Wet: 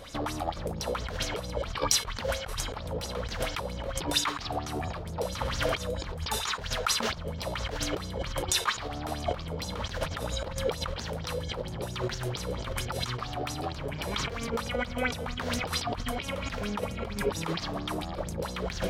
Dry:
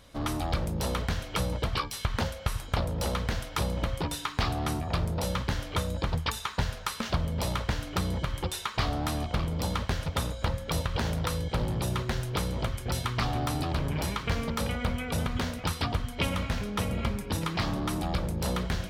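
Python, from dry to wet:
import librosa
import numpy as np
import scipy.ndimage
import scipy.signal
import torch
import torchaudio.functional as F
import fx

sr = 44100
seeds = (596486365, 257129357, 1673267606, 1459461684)

y = fx.over_compress(x, sr, threshold_db=-36.0, ratio=-1.0)
y = fx.room_flutter(y, sr, wall_m=10.9, rt60_s=1.4, at=(5.26, 5.75))
y = fx.bell_lfo(y, sr, hz=4.4, low_hz=430.0, high_hz=6800.0, db=16)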